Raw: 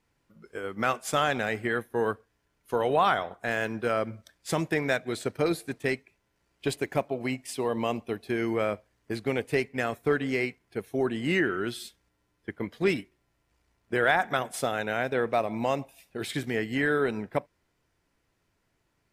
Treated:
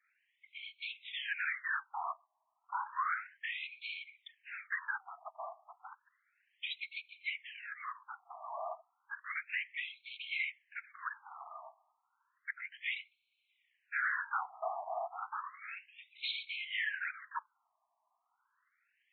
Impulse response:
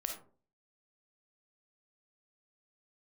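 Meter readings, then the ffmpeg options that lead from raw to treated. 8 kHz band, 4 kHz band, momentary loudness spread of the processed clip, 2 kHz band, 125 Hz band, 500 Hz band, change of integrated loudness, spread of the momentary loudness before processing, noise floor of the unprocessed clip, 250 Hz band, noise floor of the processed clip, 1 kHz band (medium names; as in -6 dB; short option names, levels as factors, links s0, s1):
under -35 dB, -5.5 dB, 14 LU, -6.5 dB, under -40 dB, -23.5 dB, -11.0 dB, 11 LU, -75 dBFS, under -40 dB, -82 dBFS, -10.0 dB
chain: -filter_complex "[0:a]lowshelf=f=470:g=-9,afftfilt=real='hypot(re,im)*cos(2*PI*random(0))':imag='hypot(re,im)*sin(2*PI*random(1))':win_size=512:overlap=0.75,acrossover=split=88|290|1100[s0][s1][s2][s3];[s2]acompressor=threshold=0.00708:ratio=4[s4];[s3]acompressor=threshold=0.00794:ratio=4[s5];[s0][s1][s4][s5]amix=inputs=4:normalize=0,aresample=11025,asoftclip=type=tanh:threshold=0.0141,aresample=44100,afftfilt=real='re*between(b*sr/1024,850*pow(3100/850,0.5+0.5*sin(2*PI*0.32*pts/sr))/1.41,850*pow(3100/850,0.5+0.5*sin(2*PI*0.32*pts/sr))*1.41)':imag='im*between(b*sr/1024,850*pow(3100/850,0.5+0.5*sin(2*PI*0.32*pts/sr))/1.41,850*pow(3100/850,0.5+0.5*sin(2*PI*0.32*pts/sr))*1.41)':win_size=1024:overlap=0.75,volume=3.76"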